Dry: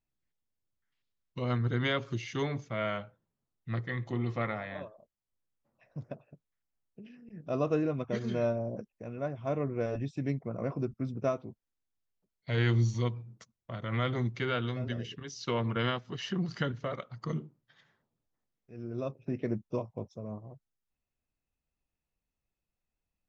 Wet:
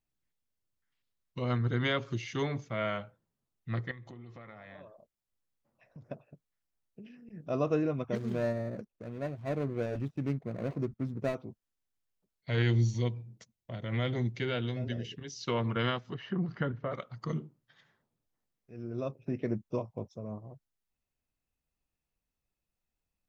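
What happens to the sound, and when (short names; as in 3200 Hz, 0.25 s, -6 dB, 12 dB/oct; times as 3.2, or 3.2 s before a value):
3.91–6.1 compressor 8:1, threshold -45 dBFS
8.15–11.35 median filter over 41 samples
12.62–15.48 bell 1200 Hz -11.5 dB 0.51 oct
16.14–16.92 LPF 1800 Hz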